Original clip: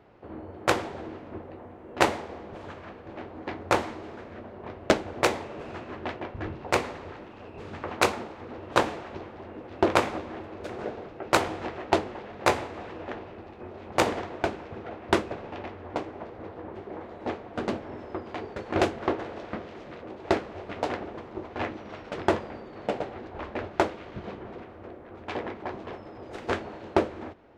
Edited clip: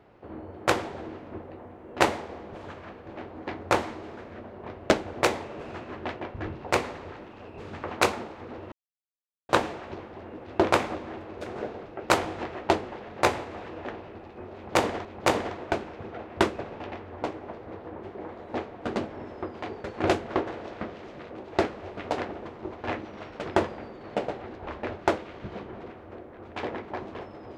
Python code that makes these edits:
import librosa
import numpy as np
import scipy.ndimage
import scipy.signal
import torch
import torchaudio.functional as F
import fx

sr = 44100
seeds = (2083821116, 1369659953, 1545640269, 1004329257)

y = fx.edit(x, sr, fx.insert_silence(at_s=8.72, length_s=0.77),
    fx.repeat(start_s=13.77, length_s=0.51, count=2), tone=tone)